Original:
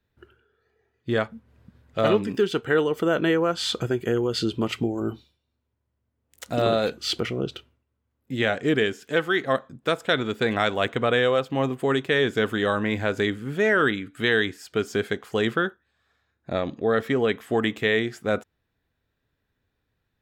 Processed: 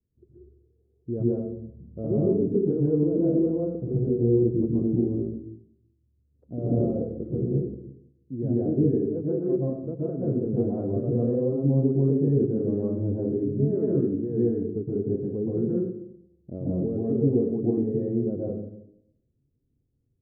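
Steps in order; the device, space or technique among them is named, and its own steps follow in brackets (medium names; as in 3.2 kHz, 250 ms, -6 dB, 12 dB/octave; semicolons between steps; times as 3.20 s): next room (low-pass 410 Hz 24 dB/octave; reverberation RT60 0.75 s, pre-delay 115 ms, DRR -7 dB); trim -4 dB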